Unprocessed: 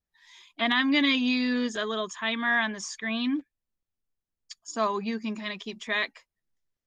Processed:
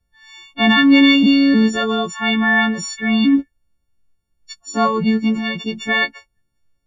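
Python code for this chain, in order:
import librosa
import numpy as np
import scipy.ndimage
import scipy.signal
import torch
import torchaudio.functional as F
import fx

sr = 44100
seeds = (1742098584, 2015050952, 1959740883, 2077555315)

y = fx.freq_snap(x, sr, grid_st=4)
y = fx.riaa(y, sr, side='playback')
y = F.gain(torch.from_numpy(y), 8.0).numpy()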